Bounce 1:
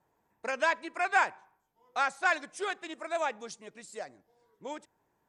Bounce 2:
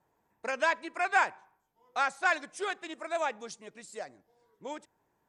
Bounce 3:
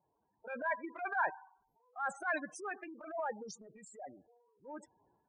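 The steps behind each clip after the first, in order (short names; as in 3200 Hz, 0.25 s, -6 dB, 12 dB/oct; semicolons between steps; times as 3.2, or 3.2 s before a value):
nothing audible
spectral gate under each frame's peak -10 dB strong; transient shaper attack -9 dB, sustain +8 dB; gain -4.5 dB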